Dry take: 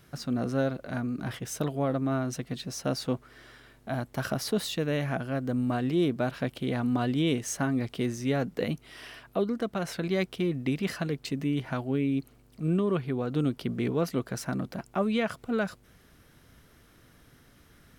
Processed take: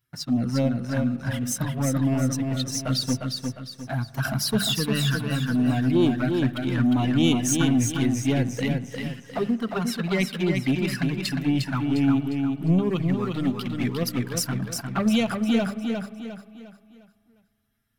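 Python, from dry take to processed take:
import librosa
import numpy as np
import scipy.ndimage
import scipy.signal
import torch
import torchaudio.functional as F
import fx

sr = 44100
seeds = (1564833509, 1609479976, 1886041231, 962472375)

y = fx.bin_expand(x, sr, power=1.5)
y = fx.highpass(y, sr, hz=110.0, slope=6)
y = fx.peak_eq(y, sr, hz=540.0, db=-8.0, octaves=1.6)
y = fx.leveller(y, sr, passes=2)
y = fx.hum_notches(y, sr, base_hz=50, count=4)
y = fx.env_flanger(y, sr, rest_ms=8.1, full_db=-25.0)
y = fx.tilt_shelf(y, sr, db=-4.0, hz=870.0, at=(12.89, 14.43))
y = fx.echo_feedback(y, sr, ms=354, feedback_pct=39, wet_db=-4.5)
y = fx.rev_spring(y, sr, rt60_s=2.2, pass_ms=(43,), chirp_ms=65, drr_db=18.0)
y = y * librosa.db_to_amplitude(7.5)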